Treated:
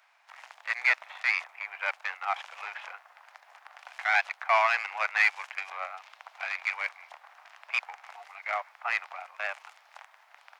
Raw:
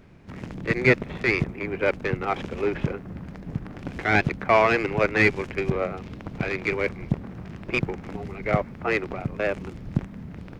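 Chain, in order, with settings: steep high-pass 730 Hz 48 dB/octave; trim -2 dB

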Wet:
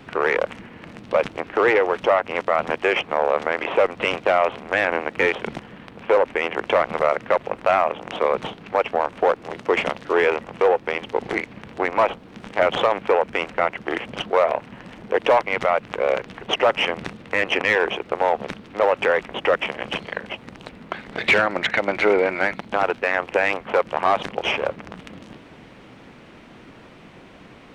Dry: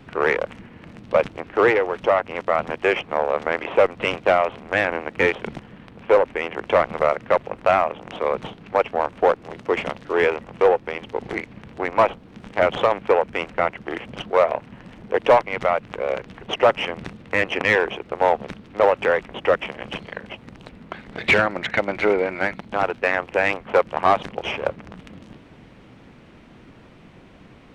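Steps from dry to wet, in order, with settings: bass shelf 200 Hz -8.5 dB; peak limiter -13.5 dBFS, peak gain reduction 7.5 dB; trim +5 dB

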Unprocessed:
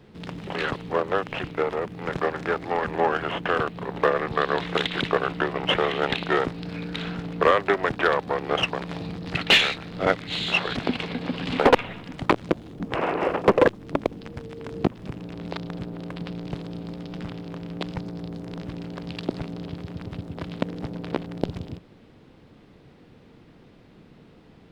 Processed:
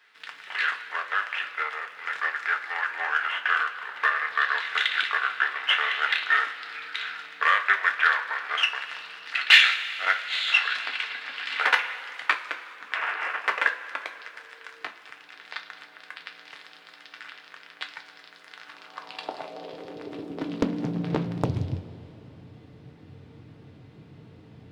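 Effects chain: two-slope reverb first 0.24 s, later 3.3 s, from -18 dB, DRR 3 dB; high-pass sweep 1.6 kHz -> 94 Hz, 18.56–21.64 s; loudspeaker Doppler distortion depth 0.65 ms; trim -2.5 dB

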